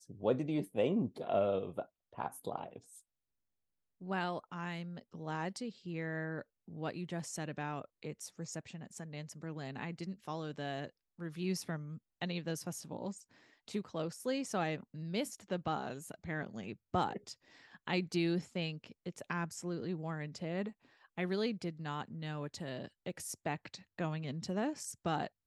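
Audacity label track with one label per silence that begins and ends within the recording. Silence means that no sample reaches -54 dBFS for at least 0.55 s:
3.000000	4.010000	silence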